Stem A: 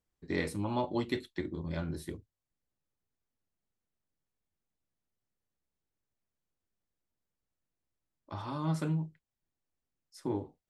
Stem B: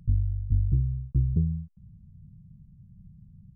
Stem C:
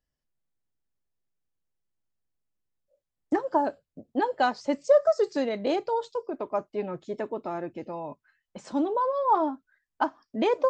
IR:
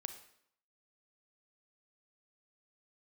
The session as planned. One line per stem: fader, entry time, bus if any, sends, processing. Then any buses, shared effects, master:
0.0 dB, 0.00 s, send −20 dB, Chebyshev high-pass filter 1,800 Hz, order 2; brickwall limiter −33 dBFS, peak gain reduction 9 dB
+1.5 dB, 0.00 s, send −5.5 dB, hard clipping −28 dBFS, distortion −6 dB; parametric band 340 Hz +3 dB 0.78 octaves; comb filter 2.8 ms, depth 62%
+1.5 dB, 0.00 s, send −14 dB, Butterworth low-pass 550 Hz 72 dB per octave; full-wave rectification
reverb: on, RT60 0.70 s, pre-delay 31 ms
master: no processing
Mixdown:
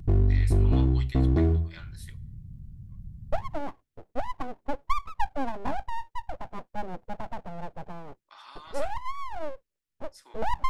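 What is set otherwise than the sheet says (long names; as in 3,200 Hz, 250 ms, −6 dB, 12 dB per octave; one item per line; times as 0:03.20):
stem C: send off
reverb return +9.5 dB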